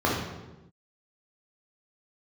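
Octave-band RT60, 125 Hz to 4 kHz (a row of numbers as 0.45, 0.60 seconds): 1.3, 1.3, 1.1, 0.95, 0.85, 0.75 seconds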